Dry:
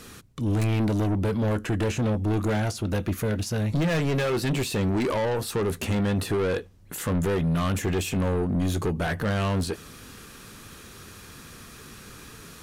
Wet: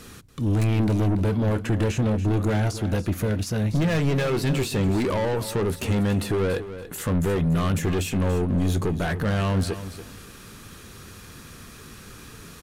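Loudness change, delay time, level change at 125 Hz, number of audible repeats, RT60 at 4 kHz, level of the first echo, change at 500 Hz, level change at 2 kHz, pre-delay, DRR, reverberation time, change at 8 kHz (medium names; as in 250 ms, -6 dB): +2.0 dB, 285 ms, +3.0 dB, 2, no reverb, -12.5 dB, +1.0 dB, +0.5 dB, no reverb, no reverb, no reverb, 0.0 dB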